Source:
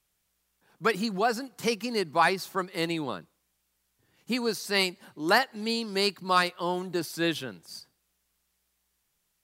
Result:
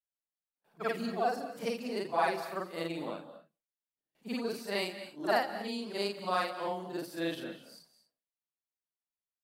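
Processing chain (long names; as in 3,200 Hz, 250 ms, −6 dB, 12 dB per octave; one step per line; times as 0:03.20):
every overlapping window played backwards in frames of 120 ms
noise gate with hold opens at −59 dBFS
graphic EQ with 15 bands 100 Hz −11 dB, 250 Hz +4 dB, 630 Hz +9 dB, 6,300 Hz −5 dB
reverb whose tail is shaped and stops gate 260 ms rising, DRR 11 dB
level −6.5 dB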